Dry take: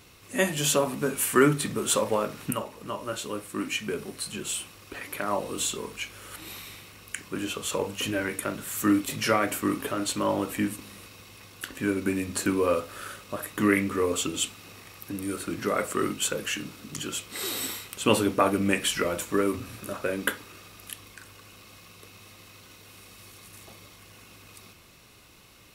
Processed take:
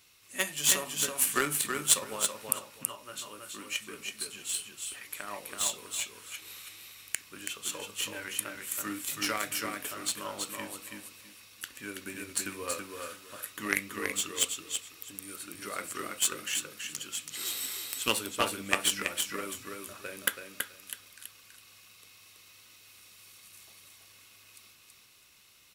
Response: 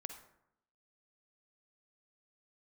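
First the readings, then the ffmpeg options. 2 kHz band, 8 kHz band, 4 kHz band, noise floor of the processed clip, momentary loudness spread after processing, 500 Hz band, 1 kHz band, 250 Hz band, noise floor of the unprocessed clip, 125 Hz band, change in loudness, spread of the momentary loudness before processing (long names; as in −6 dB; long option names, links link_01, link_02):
−3.5 dB, +1.0 dB, −0.5 dB, −58 dBFS, 17 LU, −13.0 dB, −7.5 dB, −15.0 dB, −52 dBFS, −15.0 dB, −4.5 dB, 19 LU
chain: -af "tiltshelf=frequency=1200:gain=-7.5,aecho=1:1:328|656|984:0.668|0.154|0.0354,aeval=exprs='1*(cos(1*acos(clip(val(0)/1,-1,1)))-cos(1*PI/2))+0.1*(cos(7*acos(clip(val(0)/1,-1,1)))-cos(7*PI/2))':channel_layout=same,volume=-1dB"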